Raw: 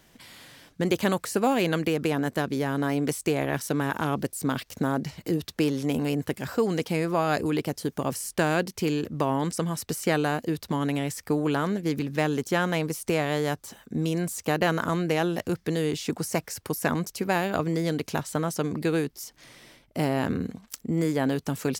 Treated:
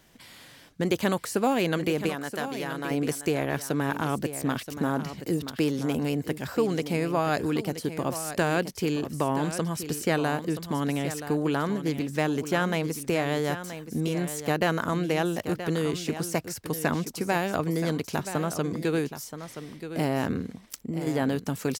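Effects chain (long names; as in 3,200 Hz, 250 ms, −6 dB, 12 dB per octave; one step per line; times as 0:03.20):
0:02.09–0:02.91: low-shelf EQ 500 Hz −11.5 dB
0:20.39–0:21.07: downward compressor, threshold −28 dBFS, peak gain reduction 7.5 dB
single-tap delay 976 ms −11 dB
level −1 dB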